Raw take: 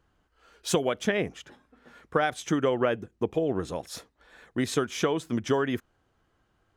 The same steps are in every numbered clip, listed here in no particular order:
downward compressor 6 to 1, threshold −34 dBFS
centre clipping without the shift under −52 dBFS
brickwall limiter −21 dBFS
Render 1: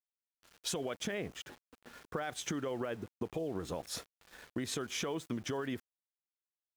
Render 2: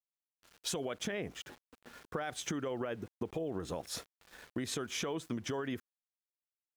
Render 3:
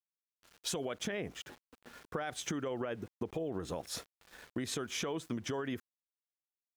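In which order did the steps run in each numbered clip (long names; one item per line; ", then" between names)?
brickwall limiter, then downward compressor, then centre clipping without the shift
brickwall limiter, then centre clipping without the shift, then downward compressor
centre clipping without the shift, then brickwall limiter, then downward compressor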